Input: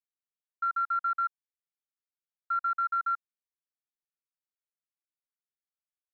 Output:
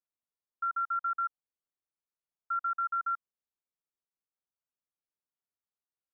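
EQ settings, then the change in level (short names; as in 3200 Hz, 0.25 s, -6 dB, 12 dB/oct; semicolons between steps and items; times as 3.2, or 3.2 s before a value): LPF 1400 Hz 24 dB/oct; 0.0 dB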